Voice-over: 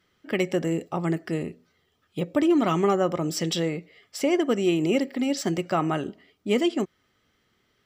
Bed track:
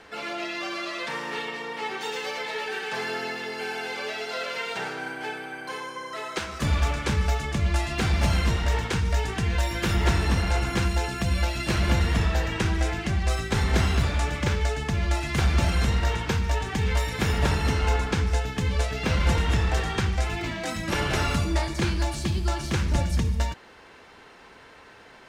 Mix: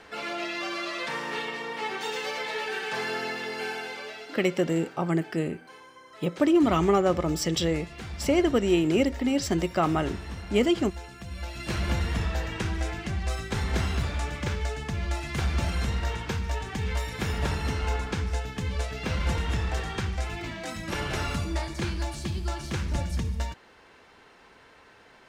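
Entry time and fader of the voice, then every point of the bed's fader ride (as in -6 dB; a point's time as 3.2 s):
4.05 s, 0.0 dB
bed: 3.66 s -0.5 dB
4.54 s -14.5 dB
11.28 s -14.5 dB
11.73 s -5 dB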